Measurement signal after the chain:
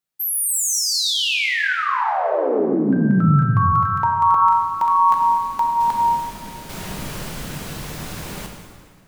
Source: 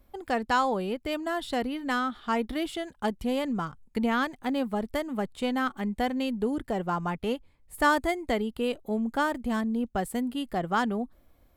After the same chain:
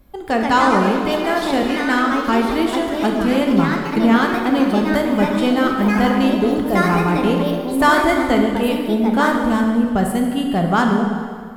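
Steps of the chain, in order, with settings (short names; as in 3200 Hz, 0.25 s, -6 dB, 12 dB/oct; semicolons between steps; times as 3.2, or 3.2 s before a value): bell 160 Hz +7.5 dB 0.99 oct; echoes that change speed 0.176 s, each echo +3 st, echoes 3, each echo -6 dB; plate-style reverb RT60 2 s, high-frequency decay 0.8×, DRR 1.5 dB; gain +7.5 dB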